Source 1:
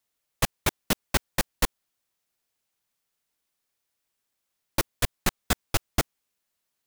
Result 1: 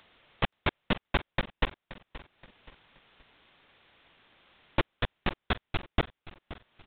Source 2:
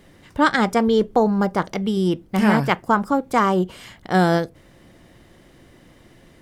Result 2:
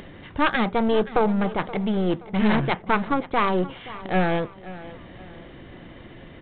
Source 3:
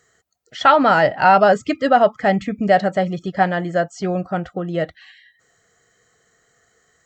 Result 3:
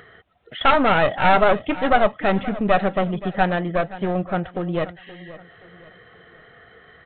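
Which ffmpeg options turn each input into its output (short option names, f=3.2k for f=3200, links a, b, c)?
-af "acompressor=mode=upward:threshold=-34dB:ratio=2.5,aresample=8000,aeval=exprs='clip(val(0),-1,0.0708)':c=same,aresample=44100,aecho=1:1:525|1050|1575:0.15|0.0554|0.0205"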